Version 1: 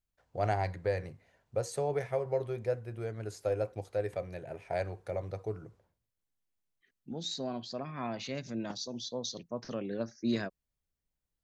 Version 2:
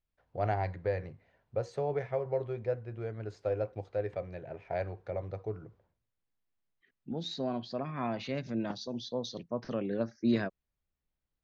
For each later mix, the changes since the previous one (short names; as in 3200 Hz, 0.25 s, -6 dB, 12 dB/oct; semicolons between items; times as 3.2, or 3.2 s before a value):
second voice +3.5 dB; master: add air absorption 200 m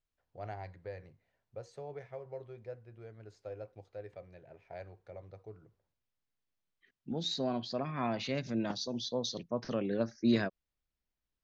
first voice -12.0 dB; master: add high shelf 4600 Hz +10.5 dB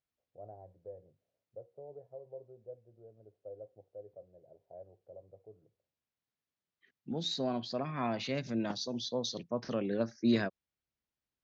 first voice: add ladder low-pass 680 Hz, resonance 50%; master: add HPF 84 Hz